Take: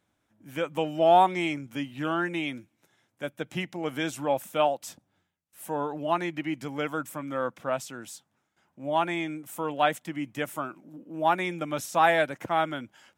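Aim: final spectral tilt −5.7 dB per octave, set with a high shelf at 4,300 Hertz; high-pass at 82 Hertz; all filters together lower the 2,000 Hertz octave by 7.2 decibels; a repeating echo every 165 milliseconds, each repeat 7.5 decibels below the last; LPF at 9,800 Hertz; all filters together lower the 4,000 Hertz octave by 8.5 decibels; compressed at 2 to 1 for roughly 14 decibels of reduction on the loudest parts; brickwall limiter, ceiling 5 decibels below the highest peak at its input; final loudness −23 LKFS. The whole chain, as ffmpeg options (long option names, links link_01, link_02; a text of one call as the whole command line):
ffmpeg -i in.wav -af "highpass=82,lowpass=9800,equalizer=frequency=2000:width_type=o:gain=-7.5,equalizer=frequency=4000:width_type=o:gain=-6.5,highshelf=frequency=4300:gain=-3.5,acompressor=threshold=-42dB:ratio=2,alimiter=level_in=5.5dB:limit=-24dB:level=0:latency=1,volume=-5.5dB,aecho=1:1:165|330|495|660|825:0.422|0.177|0.0744|0.0312|0.0131,volume=18dB" out.wav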